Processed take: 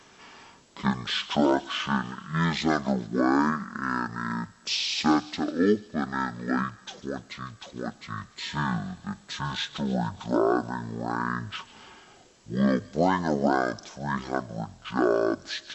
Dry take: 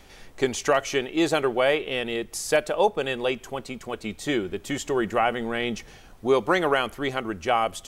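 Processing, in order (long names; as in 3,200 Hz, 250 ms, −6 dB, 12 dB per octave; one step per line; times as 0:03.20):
high-pass filter 520 Hz 6 dB per octave
high-shelf EQ 9,600 Hz +10 dB
delay with a high-pass on its return 73 ms, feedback 61%, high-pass 5,500 Hz, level −15 dB
wrong playback speed 15 ips tape played at 7.5 ips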